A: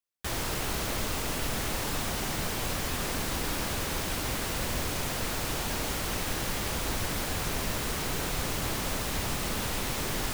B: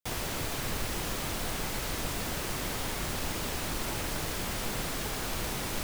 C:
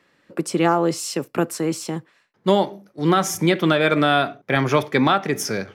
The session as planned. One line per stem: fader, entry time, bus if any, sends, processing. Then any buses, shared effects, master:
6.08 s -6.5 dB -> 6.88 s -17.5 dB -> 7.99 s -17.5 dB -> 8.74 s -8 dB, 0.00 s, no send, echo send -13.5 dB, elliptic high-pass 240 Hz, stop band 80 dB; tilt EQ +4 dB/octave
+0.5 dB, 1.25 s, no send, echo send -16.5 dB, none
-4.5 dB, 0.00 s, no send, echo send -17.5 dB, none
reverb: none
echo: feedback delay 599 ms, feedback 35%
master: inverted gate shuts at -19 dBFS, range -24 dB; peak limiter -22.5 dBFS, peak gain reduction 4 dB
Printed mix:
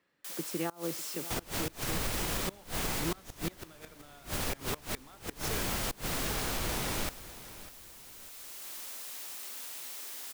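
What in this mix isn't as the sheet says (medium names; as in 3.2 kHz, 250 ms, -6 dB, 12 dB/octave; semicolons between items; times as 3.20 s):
stem A -6.5 dB -> -17.0 dB; stem C -4.5 dB -> -15.0 dB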